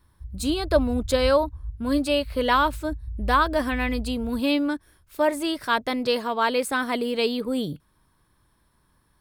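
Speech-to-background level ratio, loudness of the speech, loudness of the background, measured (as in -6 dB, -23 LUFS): 12.0 dB, -24.5 LUFS, -36.5 LUFS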